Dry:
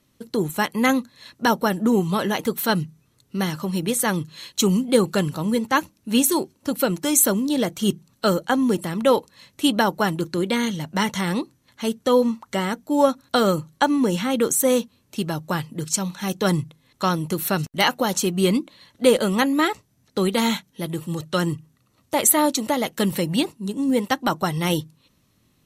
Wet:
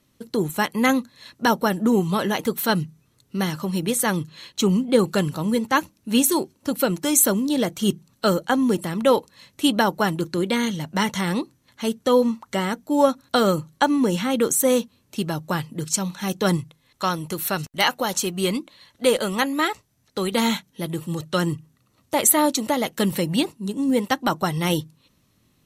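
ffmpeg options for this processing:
ffmpeg -i in.wav -filter_complex "[0:a]asettb=1/sr,asplit=3[link_01][link_02][link_03];[link_01]atrim=end=4.294[link_04];[link_02]atrim=start=4.29:end=4.99,asetpts=PTS-STARTPTS,afade=type=in:duration=0.004:curve=qsin,afade=type=out:start_time=0.696:duration=0.004:curve=qsin,highshelf=frequency=5600:gain=-9.5[link_05];[link_03]atrim=start=4.986[link_06];[link_04][link_05]acrossfade=duration=0.004:curve1=hsin:curve2=qsin[link_07];[link_07][link_06]acrossfade=duration=0.004:curve1=qsin:curve2=hsin,asettb=1/sr,asplit=3[link_08][link_09][link_10];[link_08]atrim=end=16.574[link_11];[link_09]atrim=start=16.57:end=20.32,asetpts=PTS-STARTPTS,afade=type=in:duration=0.004:curve=qsin,afade=type=out:start_time=3.746:duration=0.004:curve=qsin,equalizer=frequency=210:width=0.54:gain=-5.5[link_12];[link_10]atrim=start=20.316[link_13];[link_11][link_12]acrossfade=duration=0.004:curve1=hsin:curve2=qsin[link_14];[link_14][link_13]acrossfade=duration=0.004:curve1=qsin:curve2=hsin" out.wav

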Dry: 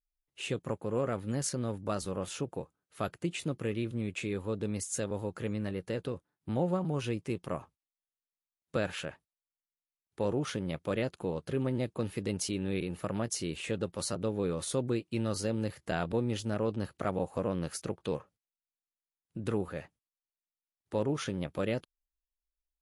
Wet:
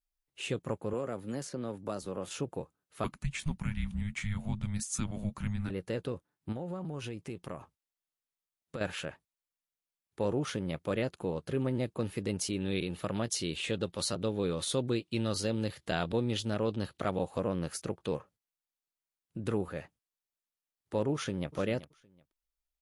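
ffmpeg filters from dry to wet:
ffmpeg -i in.wav -filter_complex "[0:a]asettb=1/sr,asplit=3[link_01][link_02][link_03];[link_01]atrim=end=0.934[link_04];[link_02]atrim=start=0.93:end=2.31,asetpts=PTS-STARTPTS,afade=type=in:duration=0.004:curve=qsin,afade=type=out:start_time=1.376:duration=0.004:curve=qsin,acrossover=split=180|1000|5000[link_05][link_06][link_07][link_08];[link_05]acompressor=threshold=-52dB:ratio=3[link_09];[link_06]acompressor=threshold=-33dB:ratio=3[link_10];[link_07]acompressor=threshold=-50dB:ratio=3[link_11];[link_08]acompressor=threshold=-52dB:ratio=3[link_12];[link_09][link_10][link_11][link_12]amix=inputs=4:normalize=0[link_13];[link_03]atrim=start=2.306[link_14];[link_04][link_13]acrossfade=duration=0.004:curve1=hsin:curve2=qsin[link_15];[link_15][link_14]acrossfade=duration=0.004:curve1=qsin:curve2=hsin,asettb=1/sr,asplit=3[link_16][link_17][link_18];[link_16]atrim=end=3.044[link_19];[link_17]atrim=start=3.04:end=5.7,asetpts=PTS-STARTPTS,afade=type=in:duration=0.004:curve=qsin,afade=type=out:start_time=2.656:duration=0.004:curve=qsin,afreqshift=-310[link_20];[link_18]atrim=start=5.696[link_21];[link_19][link_20]acrossfade=duration=0.004:curve1=hsin:curve2=qsin[link_22];[link_22][link_21]acrossfade=duration=0.004:curve1=qsin:curve2=hsin,asettb=1/sr,asplit=3[link_23][link_24][link_25];[link_23]atrim=end=6.524[link_26];[link_24]atrim=start=6.52:end=8.81,asetpts=PTS-STARTPTS,afade=type=in:duration=0.004:curve=qsin,afade=type=out:start_time=2.286:duration=0.004:curve=qsin,acompressor=threshold=-36dB:ratio=4:attack=3.2:release=140:knee=1:detection=peak[link_27];[link_25]atrim=start=8.806[link_28];[link_26][link_27]acrossfade=duration=0.004:curve1=hsin:curve2=qsin[link_29];[link_29][link_28]acrossfade=duration=0.004:curve1=qsin:curve2=hsin,asettb=1/sr,asplit=3[link_30][link_31][link_32];[link_30]atrim=end=12.604[link_33];[link_31]atrim=start=12.6:end=17.4,asetpts=PTS-STARTPTS,afade=type=in:duration=0.004:curve=qsin,afade=type=out:start_time=4.796:duration=0.004:curve=qsin,equalizer=frequency=3600:width=1.8:gain=8[link_34];[link_32]atrim=start=17.396[link_35];[link_33][link_34]acrossfade=duration=0.004:curve1=hsin:curve2=qsin[link_36];[link_36][link_35]acrossfade=duration=0.004:curve1=qsin:curve2=hsin,asplit=2[link_37][link_38];[link_38]afade=type=in:start_time=21.14:duration=0.01,afade=type=out:start_time=21.55:duration=0.01,aecho=0:1:380|760:0.177828|0.0355656[link_39];[link_37][link_39]amix=inputs=2:normalize=0" out.wav

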